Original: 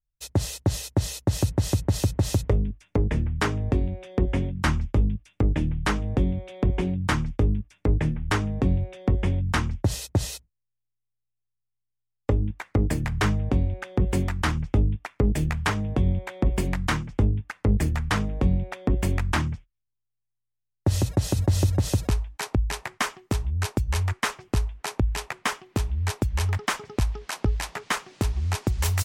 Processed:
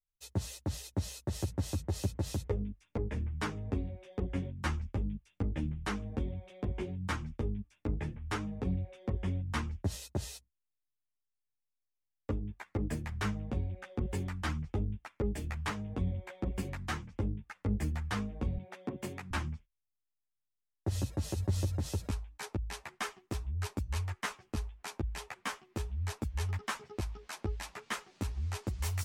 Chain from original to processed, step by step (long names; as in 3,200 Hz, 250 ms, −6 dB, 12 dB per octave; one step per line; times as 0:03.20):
0:18.57–0:19.31: high-pass filter 130 Hz 24 dB per octave
string-ensemble chorus
level −8 dB